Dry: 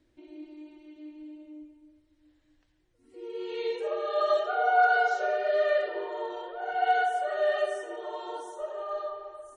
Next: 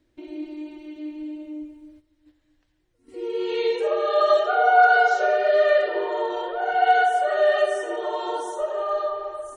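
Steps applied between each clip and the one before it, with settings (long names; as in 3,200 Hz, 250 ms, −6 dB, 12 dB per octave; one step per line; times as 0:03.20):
in parallel at −1 dB: downward compressor, threshold −36 dBFS, peak gain reduction 17 dB
on the sum: noise gate −55 dBFS, range −10 dB
level +5.5 dB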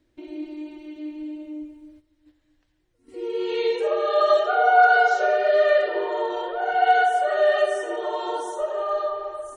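no processing that can be heard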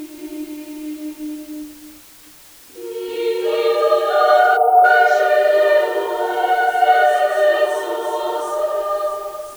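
backwards echo 385 ms −4 dB
bit-depth reduction 8 bits, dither triangular
gain on a spectral selection 0:04.57–0:04.85, 1,400–8,500 Hz −26 dB
level +4 dB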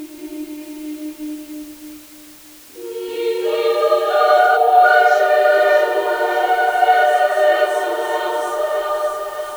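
feedback echo with a high-pass in the loop 617 ms, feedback 61%, high-pass 640 Hz, level −6.5 dB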